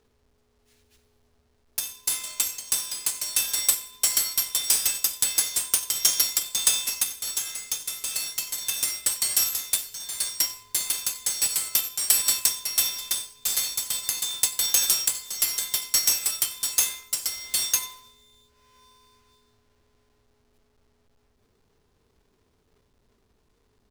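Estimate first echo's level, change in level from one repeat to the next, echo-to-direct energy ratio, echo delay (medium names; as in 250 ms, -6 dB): -21.5 dB, no regular repeats, -21.5 dB, 91 ms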